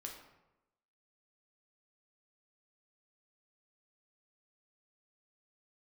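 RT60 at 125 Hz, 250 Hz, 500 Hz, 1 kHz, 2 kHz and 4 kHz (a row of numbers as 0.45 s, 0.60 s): 0.95 s, 1.0 s, 1.0 s, 0.95 s, 0.75 s, 0.60 s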